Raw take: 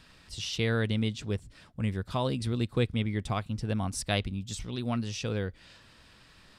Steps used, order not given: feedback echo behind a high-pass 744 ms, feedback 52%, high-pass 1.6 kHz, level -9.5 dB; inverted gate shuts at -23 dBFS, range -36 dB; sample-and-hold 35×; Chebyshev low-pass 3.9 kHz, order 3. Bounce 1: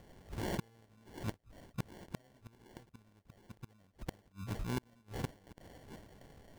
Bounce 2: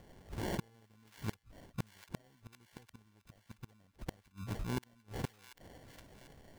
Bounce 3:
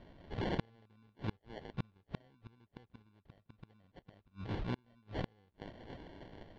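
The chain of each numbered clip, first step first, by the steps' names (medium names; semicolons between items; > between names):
Chebyshev low-pass > inverted gate > feedback echo behind a high-pass > sample-and-hold; Chebyshev low-pass > inverted gate > sample-and-hold > feedback echo behind a high-pass; feedback echo behind a high-pass > inverted gate > sample-and-hold > Chebyshev low-pass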